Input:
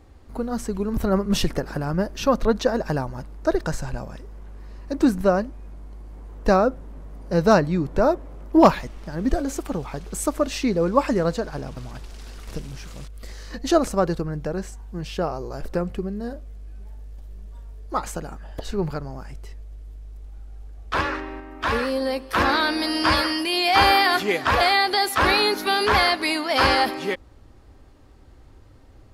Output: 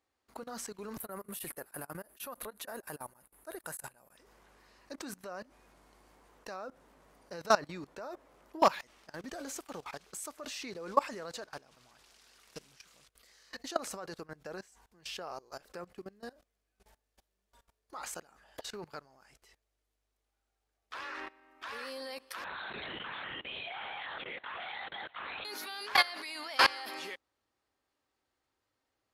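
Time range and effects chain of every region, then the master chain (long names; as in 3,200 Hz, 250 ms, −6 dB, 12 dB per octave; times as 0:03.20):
0:01.00–0:04.17: high shelf with overshoot 7,900 Hz +13.5 dB, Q 3 + tremolo along a rectified sine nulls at 6.3 Hz
0:22.44–0:25.45: flanger 1.7 Hz, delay 2.2 ms, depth 3.8 ms, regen +73% + linear-prediction vocoder at 8 kHz whisper
whole clip: high-pass filter 1,400 Hz 6 dB per octave; output level in coarse steps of 21 dB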